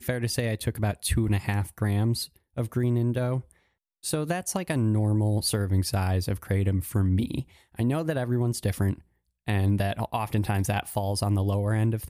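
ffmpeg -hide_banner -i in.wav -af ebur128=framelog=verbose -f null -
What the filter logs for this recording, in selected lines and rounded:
Integrated loudness:
  I:         -27.2 LUFS
  Threshold: -37.4 LUFS
Loudness range:
  LRA:         2.1 LU
  Threshold: -47.5 LUFS
  LRA low:   -28.4 LUFS
  LRA high:  -26.3 LUFS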